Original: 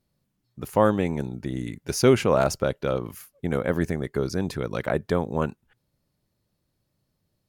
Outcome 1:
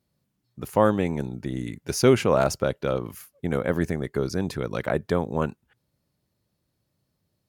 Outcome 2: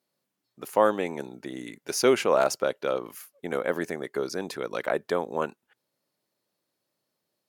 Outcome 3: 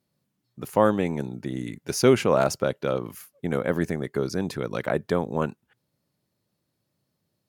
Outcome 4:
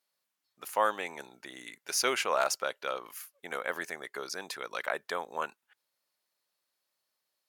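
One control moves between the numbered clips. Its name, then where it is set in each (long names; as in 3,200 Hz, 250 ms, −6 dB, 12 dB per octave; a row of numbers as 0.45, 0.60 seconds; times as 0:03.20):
high-pass filter, corner frequency: 47, 370, 120, 970 Hertz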